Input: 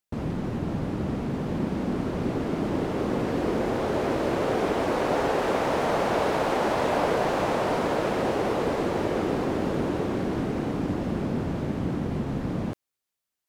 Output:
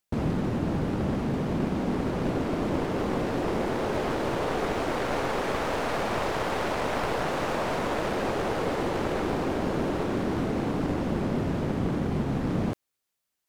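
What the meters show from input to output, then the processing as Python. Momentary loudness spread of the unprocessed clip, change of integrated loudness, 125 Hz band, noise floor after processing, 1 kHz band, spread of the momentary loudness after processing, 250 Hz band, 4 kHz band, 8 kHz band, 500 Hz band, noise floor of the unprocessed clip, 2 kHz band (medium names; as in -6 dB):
5 LU, -1.5 dB, 0.0 dB, -82 dBFS, -2.0 dB, 0 LU, -1.0 dB, 0.0 dB, 0.0 dB, -3.0 dB, under -85 dBFS, 0.0 dB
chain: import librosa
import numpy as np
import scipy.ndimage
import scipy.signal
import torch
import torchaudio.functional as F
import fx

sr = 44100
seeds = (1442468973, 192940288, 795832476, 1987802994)

y = np.minimum(x, 2.0 * 10.0 ** (-25.0 / 20.0) - x)
y = fx.rider(y, sr, range_db=10, speed_s=0.5)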